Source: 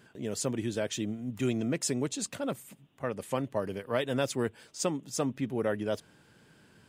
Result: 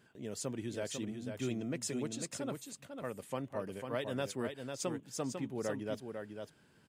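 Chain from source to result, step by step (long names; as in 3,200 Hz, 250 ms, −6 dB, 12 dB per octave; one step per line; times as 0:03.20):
single-tap delay 498 ms −6 dB
level −7.5 dB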